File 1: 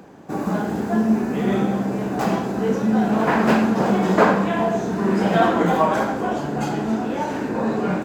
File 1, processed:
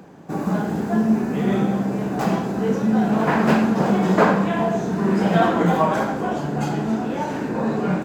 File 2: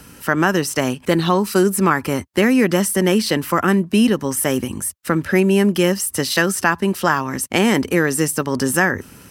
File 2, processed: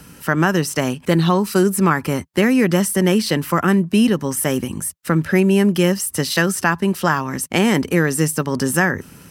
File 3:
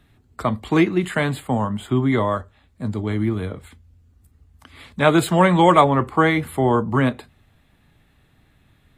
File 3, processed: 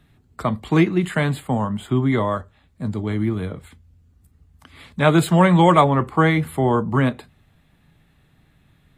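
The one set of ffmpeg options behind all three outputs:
-af "equalizer=f=160:t=o:w=0.4:g=6.5,volume=0.891"

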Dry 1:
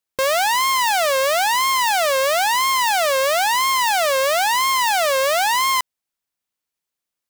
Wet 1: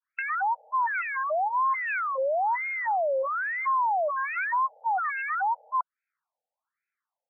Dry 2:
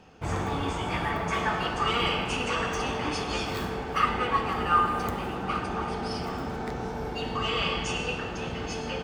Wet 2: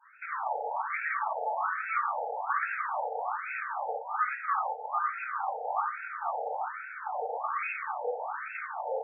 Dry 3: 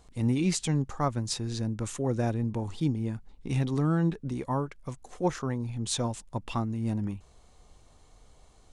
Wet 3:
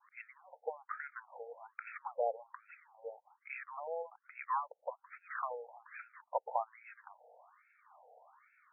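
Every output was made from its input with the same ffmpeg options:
-af "adynamicequalizer=threshold=0.0316:dfrequency=1300:dqfactor=1.4:tfrequency=1300:tqfactor=1.4:attack=5:release=100:ratio=0.375:range=2:mode=boostabove:tftype=bell,acompressor=threshold=0.0316:ratio=6,lowshelf=f=160:g=9,bandreject=f=50:t=h:w=6,bandreject=f=100:t=h:w=6,bandreject=f=150:t=h:w=6,bandreject=f=200:t=h:w=6,bandreject=f=250:t=h:w=6,afftfilt=real='re*between(b*sr/1024,610*pow(1900/610,0.5+0.5*sin(2*PI*1.2*pts/sr))/1.41,610*pow(1900/610,0.5+0.5*sin(2*PI*1.2*pts/sr))*1.41)':imag='im*between(b*sr/1024,610*pow(1900/610,0.5+0.5*sin(2*PI*1.2*pts/sr))/1.41,610*pow(1900/610,0.5+0.5*sin(2*PI*1.2*pts/sr))*1.41)':win_size=1024:overlap=0.75,volume=2.37"

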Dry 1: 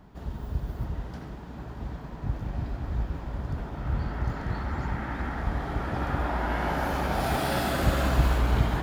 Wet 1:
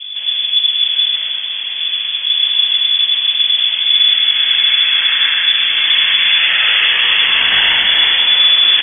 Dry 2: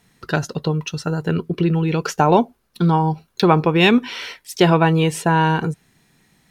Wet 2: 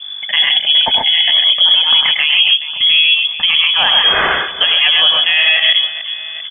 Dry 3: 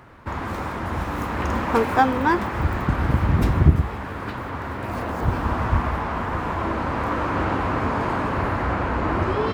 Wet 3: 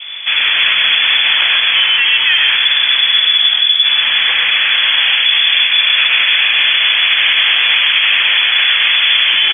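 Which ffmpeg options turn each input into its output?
-filter_complex "[0:a]adynamicequalizer=threshold=0.00708:dfrequency=1800:dqfactor=3.6:tfrequency=1800:tqfactor=3.6:attack=5:release=100:ratio=0.375:range=2.5:mode=boostabove:tftype=bell,areverse,acompressor=threshold=0.0631:ratio=16,areverse,aeval=exprs='val(0)+0.00708*(sin(2*PI*50*n/s)+sin(2*PI*2*50*n/s)/2+sin(2*PI*3*50*n/s)/3+sin(2*PI*4*50*n/s)/4+sin(2*PI*5*50*n/s)/5)':c=same,asplit=2[s0][s1];[s1]aecho=0:1:78|102|131|416|809:0.141|0.562|0.668|0.188|0.126[s2];[s0][s2]amix=inputs=2:normalize=0,lowpass=f=3000:t=q:w=0.5098,lowpass=f=3000:t=q:w=0.6013,lowpass=f=3000:t=q:w=0.9,lowpass=f=3000:t=q:w=2.563,afreqshift=-3500,alimiter=level_in=6.68:limit=0.891:release=50:level=0:latency=1,volume=0.891"

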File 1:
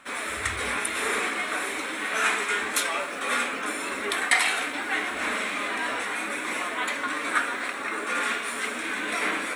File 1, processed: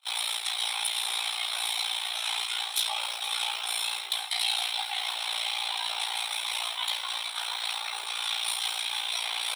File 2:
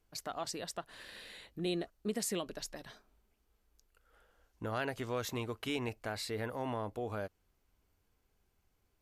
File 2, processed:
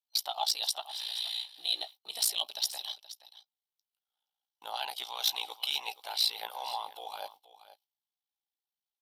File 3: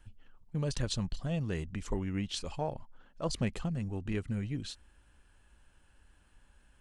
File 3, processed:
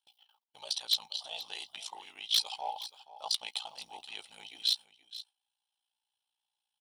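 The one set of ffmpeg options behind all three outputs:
-filter_complex "[0:a]agate=range=0.0447:threshold=0.00251:ratio=16:detection=peak,superequalizer=13b=2.24:15b=0.282:16b=0.631,areverse,acompressor=threshold=0.0178:ratio=8,areverse,flanger=delay=6.1:depth=4.2:regen=30:speed=0.35:shape=sinusoidal,highpass=f=820:t=q:w=9.7,aeval=exprs='val(0)*sin(2*PI*29*n/s)':c=same,aexciter=amount=6.1:drive=8.4:freq=2600,asoftclip=type=hard:threshold=0.106,asplit=2[s0][s1];[s1]aecho=0:1:475:0.168[s2];[s0][s2]amix=inputs=2:normalize=0"

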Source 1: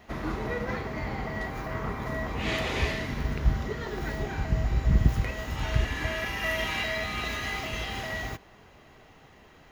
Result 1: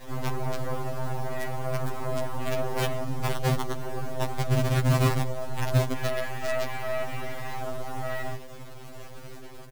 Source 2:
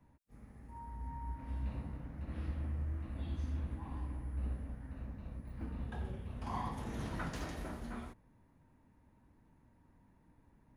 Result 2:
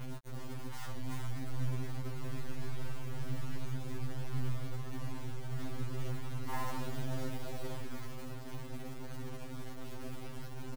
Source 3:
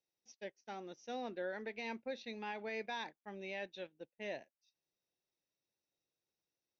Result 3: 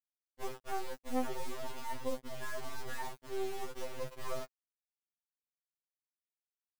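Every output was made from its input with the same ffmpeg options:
-filter_complex "[0:a]aeval=exprs='val(0)+0.5*0.0168*sgn(val(0))':c=same,acrossover=split=1300[s0][s1];[s0]acontrast=31[s2];[s1]alimiter=level_in=1.78:limit=0.0631:level=0:latency=1:release=214,volume=0.562[s3];[s2][s3]amix=inputs=2:normalize=0,adynamicequalizer=threshold=0.00631:dfrequency=260:dqfactor=1.8:tfrequency=260:tqfactor=1.8:attack=5:release=100:ratio=0.375:range=1.5:mode=cutabove:tftype=bell,aecho=1:1:111|222:0.112|0.0325,afwtdn=0.0316,acrusher=bits=4:dc=4:mix=0:aa=0.000001,afftfilt=real='re*2.45*eq(mod(b,6),0)':imag='im*2.45*eq(mod(b,6),0)':win_size=2048:overlap=0.75"

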